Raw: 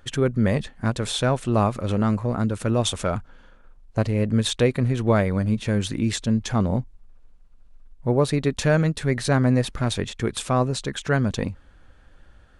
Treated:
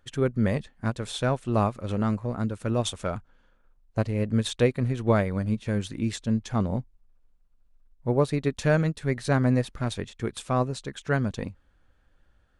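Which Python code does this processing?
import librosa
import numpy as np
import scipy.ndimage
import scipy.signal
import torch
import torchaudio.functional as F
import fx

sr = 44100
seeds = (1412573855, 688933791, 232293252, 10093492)

y = fx.upward_expand(x, sr, threshold_db=-36.0, expansion=1.5)
y = y * librosa.db_to_amplitude(-1.5)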